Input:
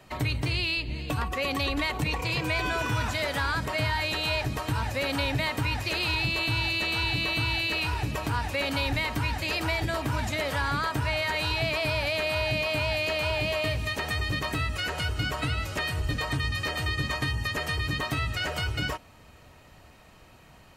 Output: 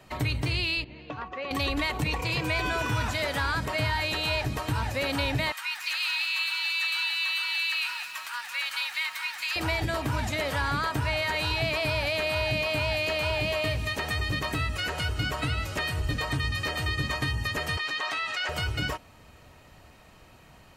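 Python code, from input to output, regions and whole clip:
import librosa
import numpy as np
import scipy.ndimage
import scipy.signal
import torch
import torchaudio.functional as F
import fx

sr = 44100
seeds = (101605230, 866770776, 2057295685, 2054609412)

y = fx.chain(x, sr, fx.highpass(hz=500.0, slope=6),
    fx.spacing_loss(db_at_10k=31),
    fx.resample_bad(factor=3, down='none', up='filtered'), at=(0.84, 1.51))
y = fx.chain(y, sr, fx.highpass(hz=1200.0, slope=24),
    fx.echo_crushed(ms=181, feedback_pct=35, bits=8, wet_db=-8.0), at=(5.52, 9.56))
y = fx.chain(y, sr, fx.bandpass_edges(low_hz=750.0, high_hz=6000.0),
    fx.env_flatten(amount_pct=70), at=(17.77, 18.49))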